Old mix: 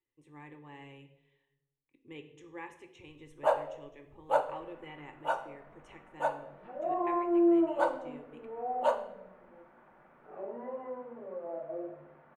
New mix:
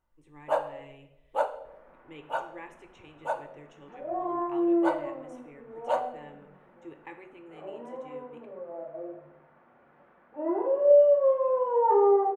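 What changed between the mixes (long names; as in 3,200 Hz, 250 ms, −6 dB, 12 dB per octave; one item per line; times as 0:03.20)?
first sound: entry −2.95 s
second sound: entry −2.75 s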